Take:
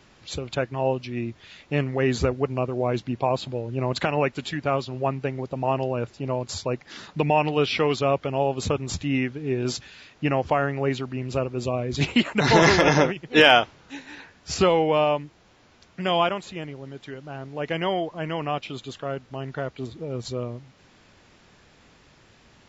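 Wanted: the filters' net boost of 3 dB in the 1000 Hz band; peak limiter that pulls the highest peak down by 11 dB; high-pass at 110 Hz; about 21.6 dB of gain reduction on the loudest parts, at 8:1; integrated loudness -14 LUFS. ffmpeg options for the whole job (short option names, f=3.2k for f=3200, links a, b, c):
-af "highpass=110,equalizer=f=1k:t=o:g=4,acompressor=threshold=-33dB:ratio=8,volume=26.5dB,alimiter=limit=-3dB:level=0:latency=1"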